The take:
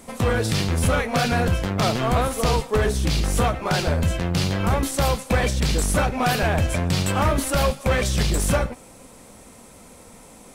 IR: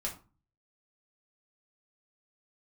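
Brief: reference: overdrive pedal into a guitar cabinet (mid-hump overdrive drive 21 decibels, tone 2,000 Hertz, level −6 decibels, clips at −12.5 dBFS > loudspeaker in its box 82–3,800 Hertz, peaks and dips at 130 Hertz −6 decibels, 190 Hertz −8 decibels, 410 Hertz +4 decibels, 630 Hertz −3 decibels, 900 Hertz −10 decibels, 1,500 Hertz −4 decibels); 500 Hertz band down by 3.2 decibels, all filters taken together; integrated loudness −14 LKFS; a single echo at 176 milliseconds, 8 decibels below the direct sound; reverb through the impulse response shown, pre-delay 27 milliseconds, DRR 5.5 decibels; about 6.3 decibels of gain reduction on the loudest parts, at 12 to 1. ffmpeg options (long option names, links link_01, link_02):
-filter_complex "[0:a]equalizer=frequency=500:width_type=o:gain=-3.5,acompressor=threshold=-23dB:ratio=12,aecho=1:1:176:0.398,asplit=2[link_01][link_02];[1:a]atrim=start_sample=2205,adelay=27[link_03];[link_02][link_03]afir=irnorm=-1:irlink=0,volume=-7.5dB[link_04];[link_01][link_04]amix=inputs=2:normalize=0,asplit=2[link_05][link_06];[link_06]highpass=frequency=720:poles=1,volume=21dB,asoftclip=type=tanh:threshold=-12.5dB[link_07];[link_05][link_07]amix=inputs=2:normalize=0,lowpass=frequency=2000:poles=1,volume=-6dB,highpass=82,equalizer=frequency=130:width_type=q:width=4:gain=-6,equalizer=frequency=190:width_type=q:width=4:gain=-8,equalizer=frequency=410:width_type=q:width=4:gain=4,equalizer=frequency=630:width_type=q:width=4:gain=-3,equalizer=frequency=900:width_type=q:width=4:gain=-10,equalizer=frequency=1500:width_type=q:width=4:gain=-4,lowpass=frequency=3800:width=0.5412,lowpass=frequency=3800:width=1.3066,volume=11.5dB"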